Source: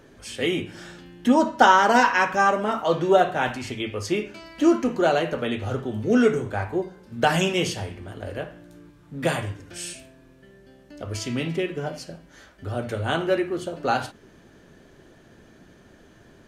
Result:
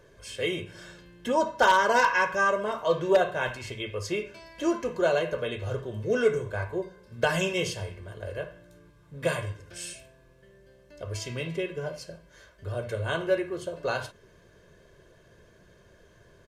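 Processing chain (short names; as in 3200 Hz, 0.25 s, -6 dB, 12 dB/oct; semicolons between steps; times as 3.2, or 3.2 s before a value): comb 1.9 ms, depth 72%; wavefolder -6 dBFS; gain -6 dB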